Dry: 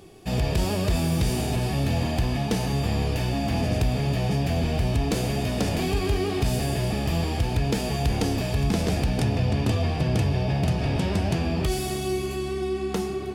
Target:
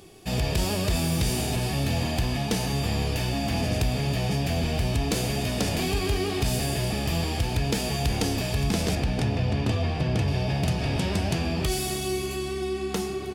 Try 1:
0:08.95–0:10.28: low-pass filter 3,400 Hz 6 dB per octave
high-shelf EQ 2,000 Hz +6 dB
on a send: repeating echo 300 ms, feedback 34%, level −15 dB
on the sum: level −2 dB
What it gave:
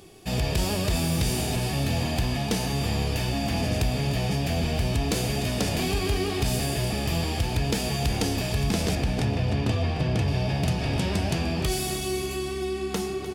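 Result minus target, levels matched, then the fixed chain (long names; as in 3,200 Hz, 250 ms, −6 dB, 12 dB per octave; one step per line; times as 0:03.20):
echo-to-direct +11 dB
0:08.95–0:10.28: low-pass filter 3,400 Hz 6 dB per octave
high-shelf EQ 2,000 Hz +6 dB
on a send: repeating echo 300 ms, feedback 34%, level −26 dB
on the sum: level −2 dB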